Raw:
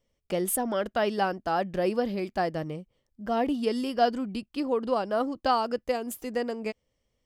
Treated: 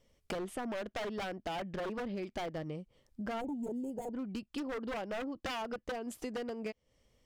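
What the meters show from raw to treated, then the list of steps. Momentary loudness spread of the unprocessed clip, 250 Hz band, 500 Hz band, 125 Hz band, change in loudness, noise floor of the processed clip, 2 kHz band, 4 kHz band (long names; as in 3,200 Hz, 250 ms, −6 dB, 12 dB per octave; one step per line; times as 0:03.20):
8 LU, −8.5 dB, −11.5 dB, −7.5 dB, −11.0 dB, −78 dBFS, −7.5 dB, −8.0 dB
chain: treble cut that deepens with the level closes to 2,200 Hz, closed at −22 dBFS
wave folding −24.5 dBFS
downward compressor 5 to 1, threshold −44 dBFS, peak gain reduction 14.5 dB
gain on a spectral selection 0:03.41–0:04.14, 960–6,400 Hz −24 dB
level +6 dB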